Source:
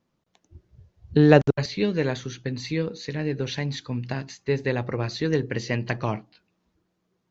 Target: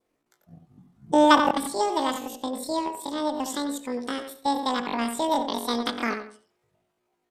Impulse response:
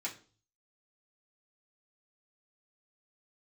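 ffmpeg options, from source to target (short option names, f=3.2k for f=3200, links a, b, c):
-filter_complex "[0:a]asplit=2[a][b];[b]adelay=85,lowpass=f=1.5k:p=1,volume=-7dB,asplit=2[c][d];[d]adelay=85,lowpass=f=1.5k:p=1,volume=0.25,asplit=2[e][f];[f]adelay=85,lowpass=f=1.5k:p=1,volume=0.25[g];[c][e][g]amix=inputs=3:normalize=0[h];[a][h]amix=inputs=2:normalize=0,adynamicequalizer=threshold=0.0141:dfrequency=1000:dqfactor=0.94:tfrequency=1000:tqfactor=0.94:attack=5:release=100:ratio=0.375:range=1.5:mode=boostabove:tftype=bell,asetrate=88200,aresample=44100,atempo=0.5,asplit=2[i][j];[1:a]atrim=start_sample=2205,lowpass=1.3k,adelay=143[k];[j][k]afir=irnorm=-1:irlink=0,volume=-24.5dB[l];[i][l]amix=inputs=2:normalize=0,volume=-1.5dB"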